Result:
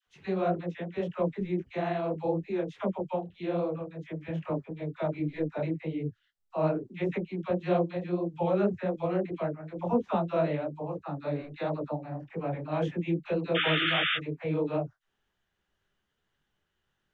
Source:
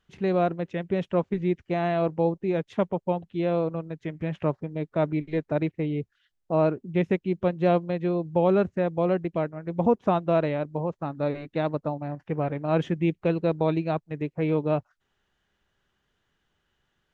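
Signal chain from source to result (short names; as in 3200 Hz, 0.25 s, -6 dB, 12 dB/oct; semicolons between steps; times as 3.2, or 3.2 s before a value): painted sound noise, 13.54–14.16, 1200–3600 Hz -23 dBFS; dispersion lows, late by 71 ms, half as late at 700 Hz; detuned doubles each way 58 cents; gain -1.5 dB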